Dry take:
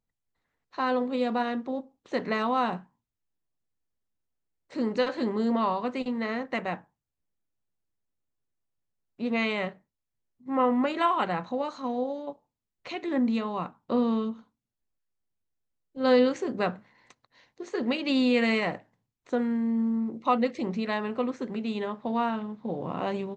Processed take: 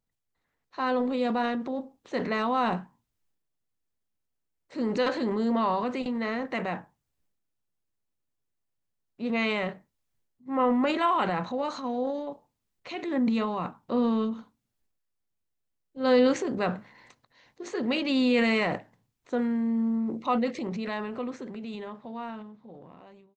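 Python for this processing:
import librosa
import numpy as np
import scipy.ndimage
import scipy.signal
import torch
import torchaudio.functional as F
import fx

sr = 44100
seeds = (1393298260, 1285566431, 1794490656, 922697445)

y = fx.fade_out_tail(x, sr, length_s=3.64)
y = fx.transient(y, sr, attack_db=-2, sustain_db=7)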